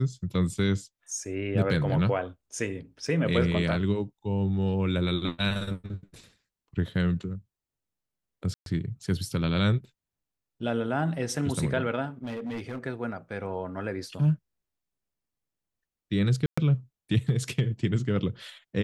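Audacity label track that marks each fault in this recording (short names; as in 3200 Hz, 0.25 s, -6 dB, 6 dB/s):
3.070000	3.070000	gap 3.4 ms
8.540000	8.660000	gap 0.122 s
12.230000	12.790000	clipped -30.5 dBFS
16.460000	16.570000	gap 0.115 s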